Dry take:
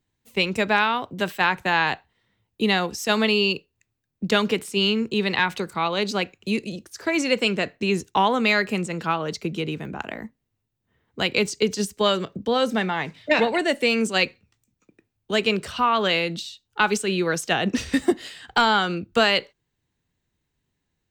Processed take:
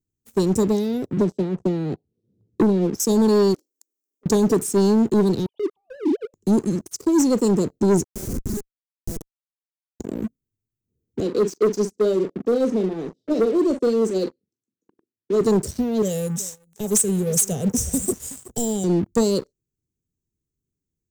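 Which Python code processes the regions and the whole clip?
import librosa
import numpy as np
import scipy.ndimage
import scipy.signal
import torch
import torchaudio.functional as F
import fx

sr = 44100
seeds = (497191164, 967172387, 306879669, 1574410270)

y = fx.chain(x, sr, fx.highpass(hz=120.0, slope=12),
    fx.spacing_loss(db_at_10k=32),
    fx.band_squash(depth_pct=100), at=(1.17, 3.0))
y = fx.chain(y, sr, fx.lower_of_two(delay_ms=1.2),
    fx.steep_highpass(hz=290.0, slope=48),
    fx.over_compress(threshold_db=-43.0, ratio=-0.5), at=(3.54, 4.26))
y = fx.chain(y, sr, fx.sine_speech(),
    fx.over_compress(threshold_db=-33.0, ratio=-1.0), at=(5.46, 6.34))
y = fx.chain(y, sr, fx.lower_of_two(delay_ms=7.3),
    fx.ladder_highpass(hz=650.0, resonance_pct=60),
    fx.schmitt(flips_db=-27.5), at=(8.04, 10.0))
y = fx.chain(y, sr, fx.bandpass_edges(low_hz=310.0, high_hz=3200.0),
    fx.doubler(ms=42.0, db=-10.5), at=(11.2, 15.41))
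y = fx.chain(y, sr, fx.high_shelf(hz=2900.0, db=11.0),
    fx.fixed_phaser(hz=1200.0, stages=6),
    fx.echo_single(ms=372, db=-18.5), at=(16.02, 18.84))
y = scipy.signal.sosfilt(scipy.signal.cheby1(3, 1.0, [410.0, 6200.0], 'bandstop', fs=sr, output='sos'), y)
y = fx.leveller(y, sr, passes=3)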